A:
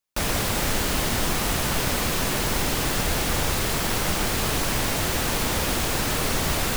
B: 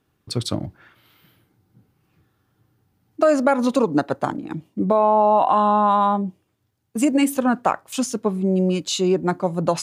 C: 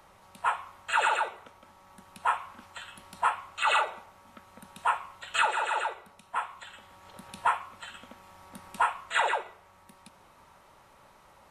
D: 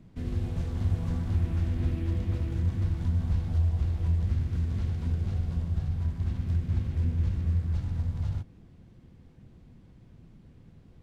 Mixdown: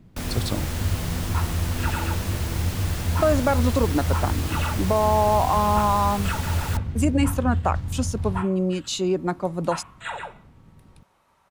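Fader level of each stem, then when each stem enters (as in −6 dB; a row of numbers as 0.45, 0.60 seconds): −9.0, −4.0, −6.5, +2.0 decibels; 0.00, 0.00, 0.90, 0.00 seconds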